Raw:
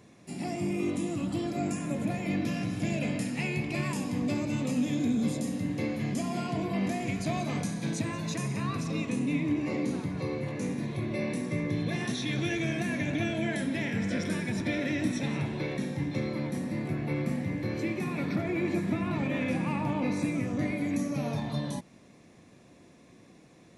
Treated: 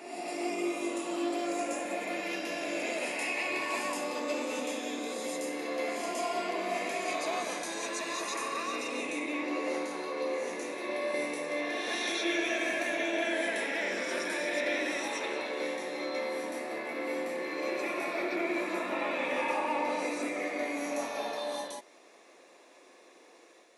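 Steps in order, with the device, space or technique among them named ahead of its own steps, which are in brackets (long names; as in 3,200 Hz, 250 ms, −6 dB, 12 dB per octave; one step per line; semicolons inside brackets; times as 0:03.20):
ghost voice (reversed playback; convolution reverb RT60 1.9 s, pre-delay 112 ms, DRR −2.5 dB; reversed playback; high-pass filter 420 Hz 24 dB per octave)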